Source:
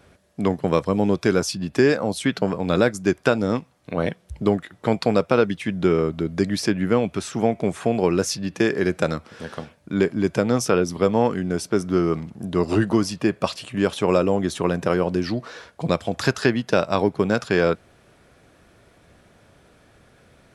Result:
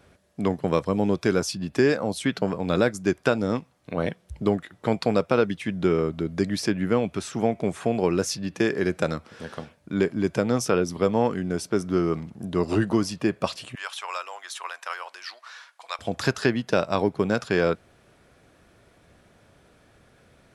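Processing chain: 13.75–15.99 HPF 940 Hz 24 dB/oct; gain -3 dB

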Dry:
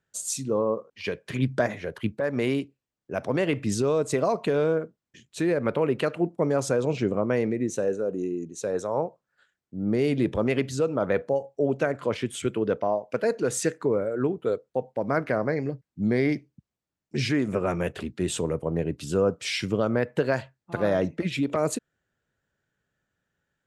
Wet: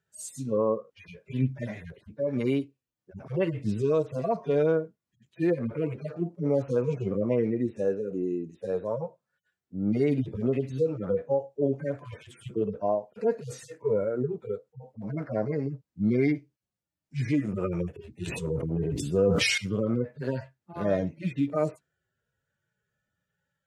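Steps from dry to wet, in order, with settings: median-filter separation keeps harmonic; 18.13–19.58 sustainer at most 21 dB/s

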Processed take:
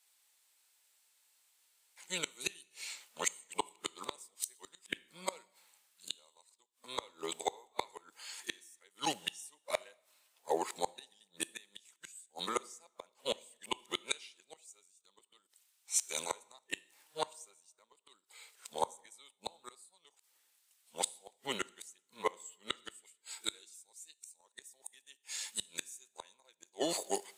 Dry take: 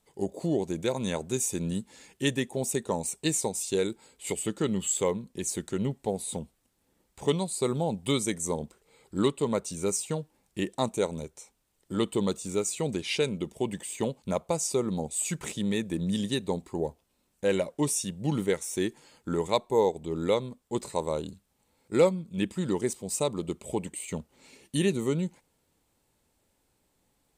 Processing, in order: whole clip reversed; HPF 1400 Hz 12 dB/oct; dynamic EQ 2000 Hz, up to -4 dB, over -53 dBFS, Q 1; flipped gate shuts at -33 dBFS, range -33 dB; two-slope reverb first 0.75 s, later 2.2 s, DRR 19 dB; three-band expander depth 40%; gain +13.5 dB

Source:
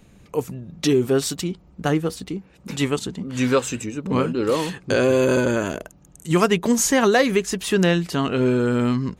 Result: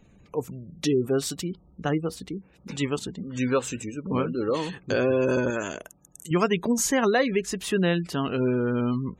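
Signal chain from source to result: spectral gate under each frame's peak -30 dB strong; 5.5–6.31 tilt +2 dB/oct; gain -5 dB

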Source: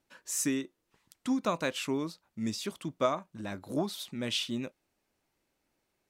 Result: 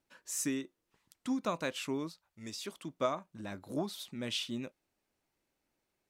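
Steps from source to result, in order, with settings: 2.08–2.97 bell 380 Hz -> 63 Hz -14.5 dB 1.2 oct; gain -4 dB

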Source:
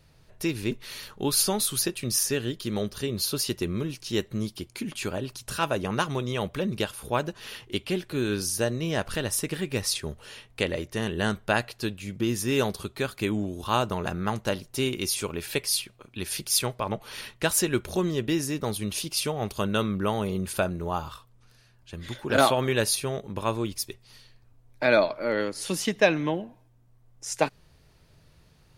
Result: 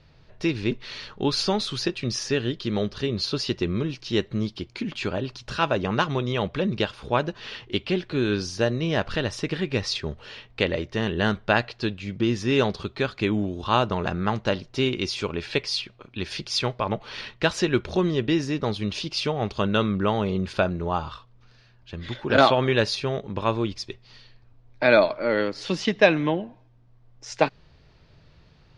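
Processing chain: LPF 5000 Hz 24 dB/oct; gain +3.5 dB

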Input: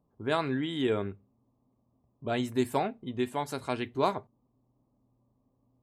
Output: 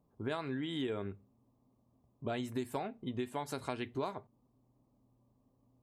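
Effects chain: compressor 6:1, threshold -34 dBFS, peak gain reduction 13 dB

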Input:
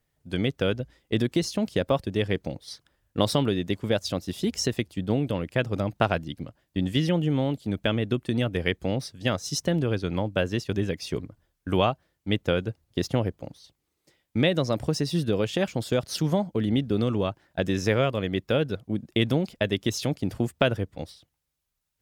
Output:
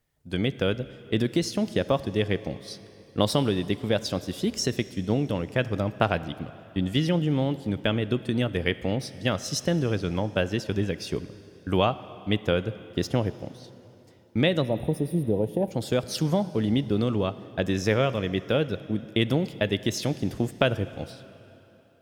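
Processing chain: spectral gain 14.62–15.71, 1000–8800 Hz -23 dB; plate-style reverb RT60 3.3 s, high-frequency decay 0.85×, DRR 14.5 dB

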